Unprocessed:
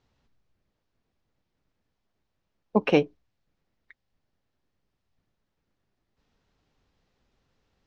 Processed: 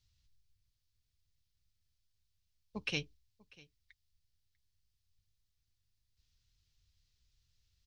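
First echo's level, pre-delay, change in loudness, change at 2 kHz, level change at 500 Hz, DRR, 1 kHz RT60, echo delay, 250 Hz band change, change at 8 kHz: -23.5 dB, none, -15.0 dB, -7.5 dB, -24.5 dB, none, none, 0.644 s, -20.0 dB, n/a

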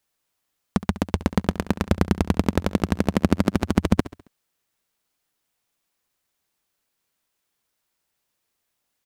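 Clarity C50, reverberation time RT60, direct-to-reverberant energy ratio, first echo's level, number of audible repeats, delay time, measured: none, none, none, -16.0 dB, 3, 68 ms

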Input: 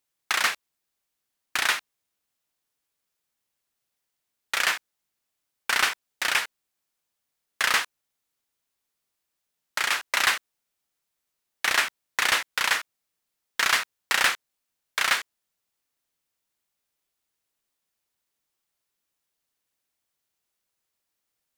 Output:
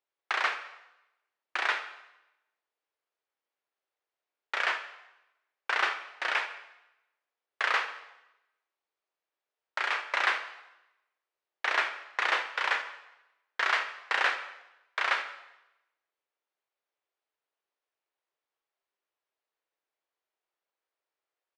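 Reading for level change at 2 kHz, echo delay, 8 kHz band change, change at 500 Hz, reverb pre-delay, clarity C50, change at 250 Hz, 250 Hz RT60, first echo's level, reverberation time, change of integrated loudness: -4.0 dB, 81 ms, -19.5 dB, -0.5 dB, 4 ms, 10.0 dB, -7.5 dB, 0.95 s, -17.0 dB, 0.95 s, -5.5 dB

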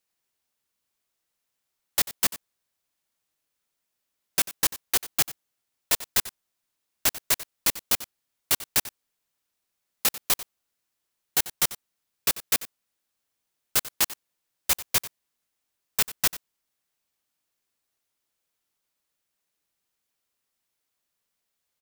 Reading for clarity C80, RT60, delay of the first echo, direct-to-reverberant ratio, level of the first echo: none, none, 92 ms, none, -16.0 dB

